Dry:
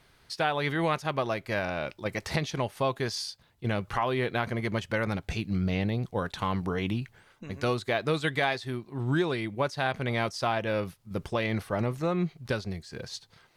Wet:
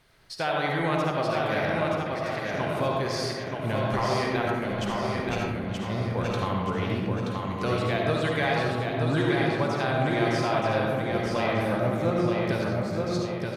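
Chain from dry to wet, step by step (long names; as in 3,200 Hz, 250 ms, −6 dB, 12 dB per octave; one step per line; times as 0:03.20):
0:02.01–0:02.53: four-pole ladder high-pass 1,300 Hz, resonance 50%
0:04.42–0:05.90: compressor whose output falls as the input rises −36 dBFS, ratio −1
repeating echo 927 ms, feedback 42%, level −4 dB
convolution reverb RT60 1.9 s, pre-delay 30 ms, DRR −1.5 dB
level −2 dB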